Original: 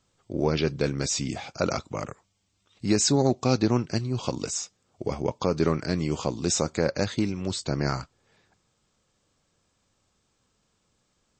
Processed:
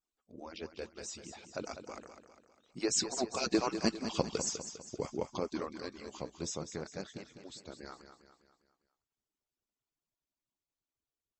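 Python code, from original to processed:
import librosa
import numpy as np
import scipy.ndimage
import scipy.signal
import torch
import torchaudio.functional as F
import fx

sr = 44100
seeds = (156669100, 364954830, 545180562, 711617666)

y = fx.hpss_only(x, sr, part='percussive')
y = fx.doppler_pass(y, sr, speed_mps=9, closest_m=5.2, pass_at_s=3.89)
y = fx.echo_feedback(y, sr, ms=201, feedback_pct=47, wet_db=-9.5)
y = F.gain(torch.from_numpy(y), -1.0).numpy()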